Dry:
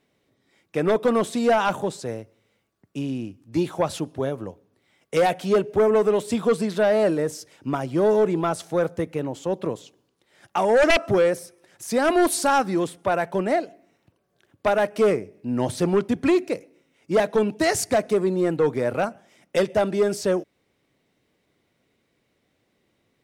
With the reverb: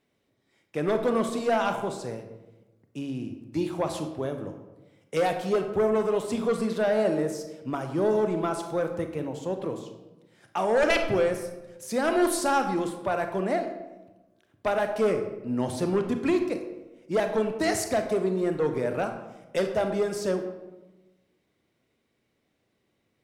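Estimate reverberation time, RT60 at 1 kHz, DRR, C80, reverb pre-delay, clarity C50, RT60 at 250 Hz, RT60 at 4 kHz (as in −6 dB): 1.1 s, 1.0 s, 6.0 dB, 10.0 dB, 28 ms, 8.0 dB, 1.4 s, 0.60 s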